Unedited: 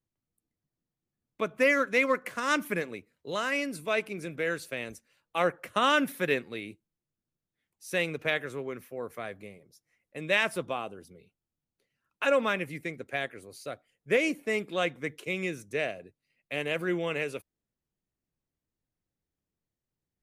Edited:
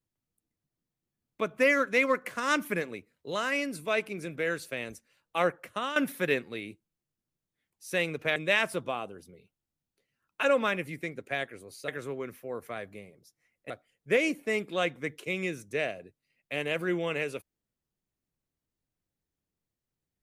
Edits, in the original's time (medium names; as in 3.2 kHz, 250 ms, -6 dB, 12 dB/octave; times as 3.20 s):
5.45–5.96 s: fade out, to -14 dB
8.36–10.18 s: move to 13.70 s